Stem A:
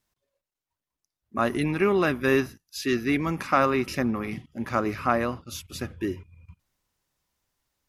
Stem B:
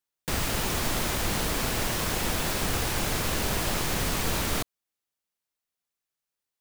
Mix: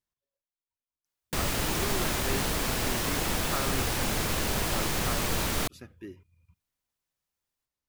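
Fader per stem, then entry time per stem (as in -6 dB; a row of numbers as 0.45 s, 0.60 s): -14.0 dB, -1.0 dB; 0.00 s, 1.05 s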